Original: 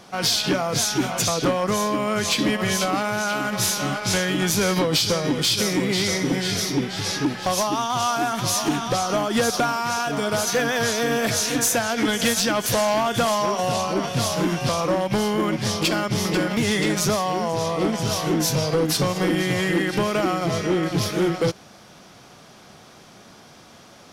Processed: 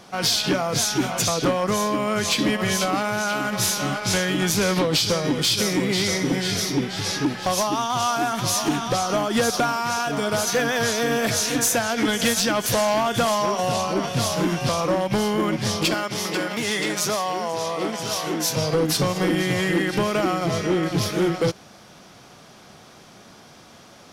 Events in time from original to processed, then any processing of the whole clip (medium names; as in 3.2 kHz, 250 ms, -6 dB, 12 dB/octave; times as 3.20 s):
4.52–5.11 s: loudspeaker Doppler distortion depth 0.13 ms
15.94–18.57 s: high-pass 440 Hz 6 dB/octave